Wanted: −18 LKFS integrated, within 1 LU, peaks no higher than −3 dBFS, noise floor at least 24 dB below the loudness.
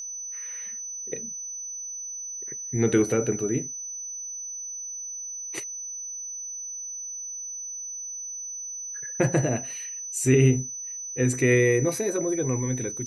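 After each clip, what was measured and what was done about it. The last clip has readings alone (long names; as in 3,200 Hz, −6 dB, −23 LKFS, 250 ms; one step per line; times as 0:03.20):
interfering tone 6,000 Hz; level of the tone −33 dBFS; integrated loudness −27.5 LKFS; sample peak −7.5 dBFS; target loudness −18.0 LKFS
→ notch filter 6,000 Hz, Q 30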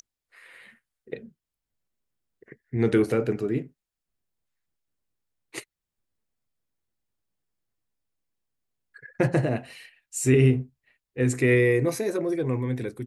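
interfering tone none found; integrated loudness −24.5 LKFS; sample peak −8.0 dBFS; target loudness −18.0 LKFS
→ level +6.5 dB
brickwall limiter −3 dBFS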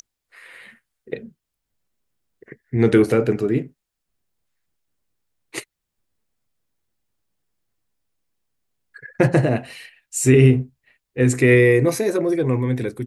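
integrated loudness −18.0 LKFS; sample peak −3.0 dBFS; background noise floor −81 dBFS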